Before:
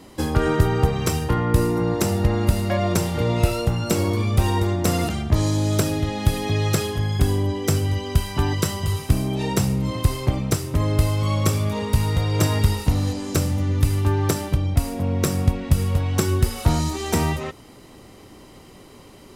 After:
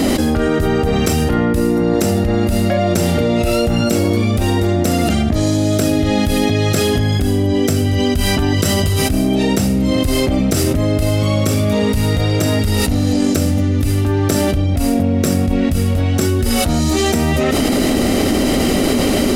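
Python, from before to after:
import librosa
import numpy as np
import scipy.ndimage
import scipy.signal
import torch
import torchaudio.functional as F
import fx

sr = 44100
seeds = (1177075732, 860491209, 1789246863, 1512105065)

y = fx.graphic_eq_31(x, sr, hz=(125, 250, 630, 1000), db=(-11, 9, 5, -11))
y = fx.env_flatten(y, sr, amount_pct=100)
y = y * 10.0 ** (-2.0 / 20.0)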